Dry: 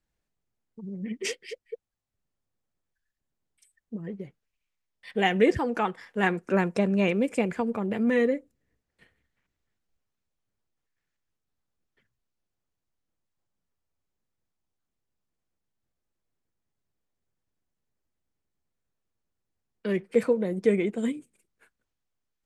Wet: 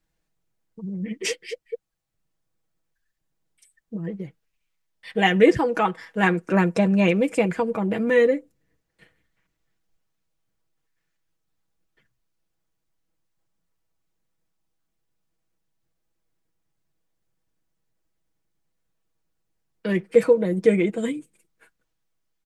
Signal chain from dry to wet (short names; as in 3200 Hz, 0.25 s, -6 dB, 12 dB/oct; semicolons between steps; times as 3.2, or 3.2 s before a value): comb 6.2 ms, depth 54%; gain +4 dB